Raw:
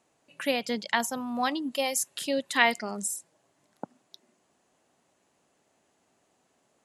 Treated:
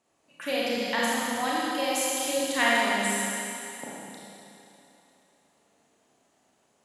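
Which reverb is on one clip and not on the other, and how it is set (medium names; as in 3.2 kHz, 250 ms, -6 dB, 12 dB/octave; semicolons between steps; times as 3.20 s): Schroeder reverb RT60 3 s, combs from 27 ms, DRR -7 dB; trim -5 dB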